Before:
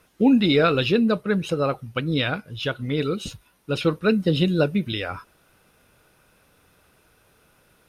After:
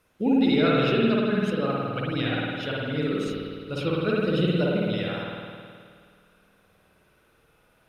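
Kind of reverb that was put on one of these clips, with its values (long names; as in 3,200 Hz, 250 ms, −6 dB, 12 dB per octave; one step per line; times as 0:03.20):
spring reverb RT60 2.1 s, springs 52 ms, chirp 30 ms, DRR −5 dB
level −8.5 dB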